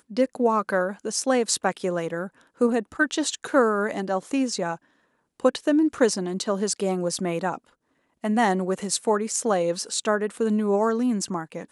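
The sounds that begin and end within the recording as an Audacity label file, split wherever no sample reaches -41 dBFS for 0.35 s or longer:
5.400000	7.580000	sound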